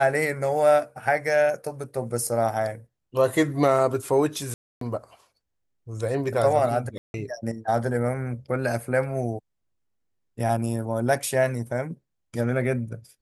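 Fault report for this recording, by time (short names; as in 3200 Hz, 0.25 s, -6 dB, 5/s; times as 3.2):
4.54–4.81 gap 0.273 s
6.98–7.14 gap 0.161 s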